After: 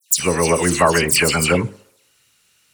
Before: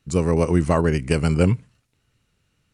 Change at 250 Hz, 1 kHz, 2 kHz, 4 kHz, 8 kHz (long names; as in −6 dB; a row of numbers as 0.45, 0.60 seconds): −1.0, +8.5, +12.5, +15.5, +19.5 decibels